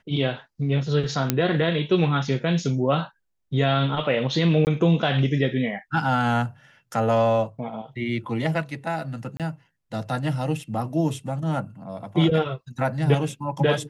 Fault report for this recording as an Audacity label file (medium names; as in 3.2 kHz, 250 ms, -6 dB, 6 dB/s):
1.300000	1.300000	pop -4 dBFS
4.650000	4.670000	dropout 19 ms
9.370000	9.400000	dropout 27 ms